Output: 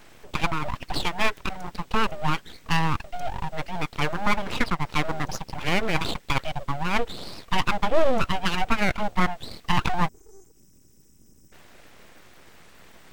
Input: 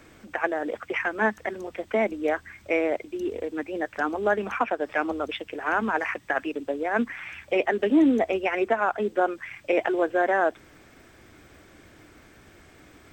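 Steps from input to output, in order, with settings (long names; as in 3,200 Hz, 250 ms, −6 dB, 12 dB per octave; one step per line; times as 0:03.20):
time-frequency box erased 0:10.08–0:11.52, 240–5,100 Hz
full-wave rectification
level +3.5 dB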